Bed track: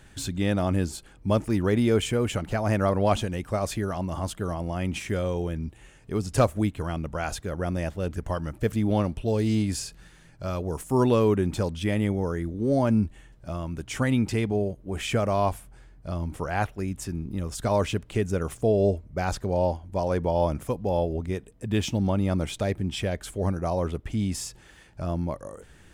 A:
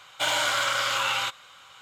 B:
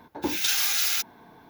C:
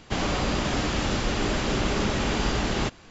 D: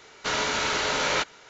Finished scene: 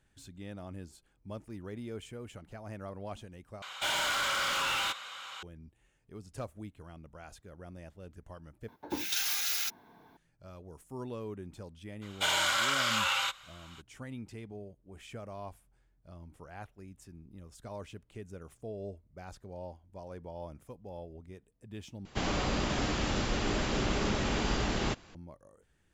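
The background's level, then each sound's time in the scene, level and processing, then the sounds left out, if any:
bed track -19.5 dB
3.62 s: replace with A -9 dB + overdrive pedal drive 22 dB, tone 6.3 kHz, clips at -17 dBFS
8.68 s: replace with B -7.5 dB
12.01 s: add A -3 dB, fades 0.02 s + bass shelf 450 Hz -10 dB
22.05 s: replace with C -5.5 dB
not used: D

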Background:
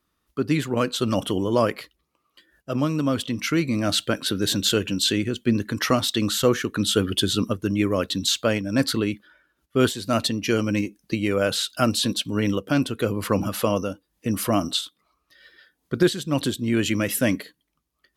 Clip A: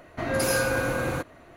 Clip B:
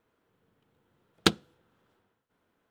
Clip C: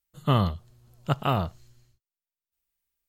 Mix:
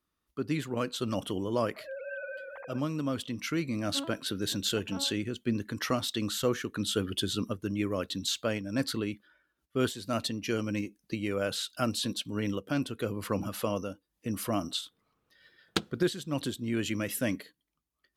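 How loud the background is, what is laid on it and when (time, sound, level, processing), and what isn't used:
background -9 dB
1.57 s: add A -15.5 dB + formants replaced by sine waves
3.66 s: add C -17 dB + vocoder on a broken chord major triad, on A3, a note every 186 ms
14.50 s: add B -7 dB

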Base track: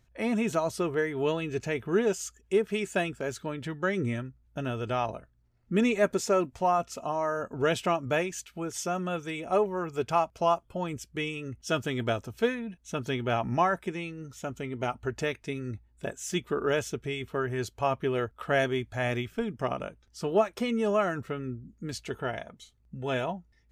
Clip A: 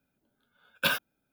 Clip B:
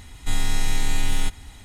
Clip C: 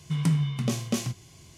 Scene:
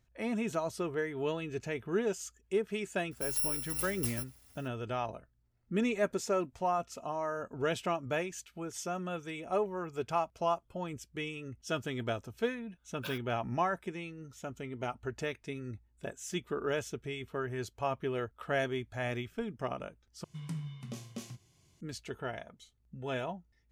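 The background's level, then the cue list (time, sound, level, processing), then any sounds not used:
base track -6 dB
3.11 s: add C -10 dB + bit-reversed sample order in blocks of 256 samples
12.20 s: add A -17 dB
20.24 s: replace with C -15.5 dB
not used: B

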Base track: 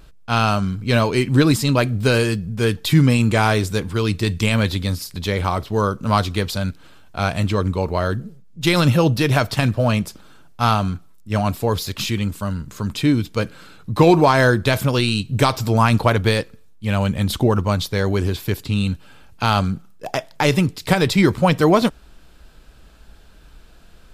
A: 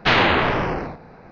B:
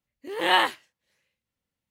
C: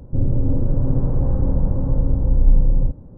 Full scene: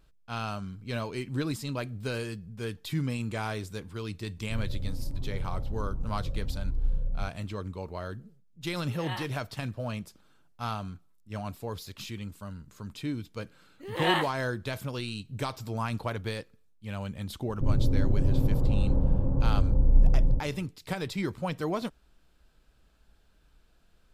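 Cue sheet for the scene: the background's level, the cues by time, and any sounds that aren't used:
base track -16.5 dB
4.37 s: add C -14 dB + Shepard-style flanger rising 1.3 Hz
8.58 s: add B -18 dB
13.56 s: add B -6.5 dB
17.48 s: add C -6 dB
not used: A

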